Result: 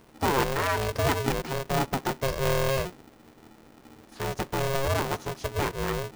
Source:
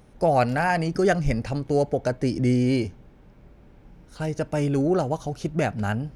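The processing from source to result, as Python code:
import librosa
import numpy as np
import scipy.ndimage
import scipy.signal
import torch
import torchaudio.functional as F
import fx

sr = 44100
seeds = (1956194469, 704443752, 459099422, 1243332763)

y = fx.diode_clip(x, sr, knee_db=-20.0)
y = y * np.sign(np.sin(2.0 * np.pi * 270.0 * np.arange(len(y)) / sr))
y = y * librosa.db_to_amplitude(-2.5)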